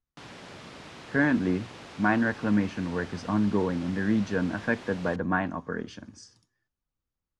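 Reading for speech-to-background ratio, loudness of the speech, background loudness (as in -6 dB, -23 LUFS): 17.0 dB, -28.0 LUFS, -45.0 LUFS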